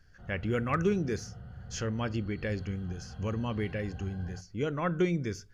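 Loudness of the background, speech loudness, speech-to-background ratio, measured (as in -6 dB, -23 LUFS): -46.5 LUFS, -33.0 LUFS, 13.5 dB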